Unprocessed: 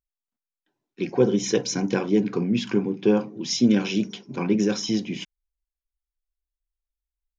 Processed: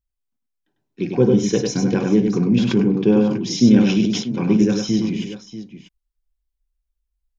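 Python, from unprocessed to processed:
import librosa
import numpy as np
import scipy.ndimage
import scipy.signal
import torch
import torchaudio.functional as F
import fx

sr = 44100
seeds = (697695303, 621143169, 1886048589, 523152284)

y = fx.low_shelf(x, sr, hz=230.0, db=12.0)
y = fx.echo_multitap(y, sr, ms=(51, 99, 639), db=(-17.0, -4.5, -13.5))
y = fx.sustainer(y, sr, db_per_s=52.0, at=(2.5, 4.22), fade=0.02)
y = y * 10.0 ** (-1.0 / 20.0)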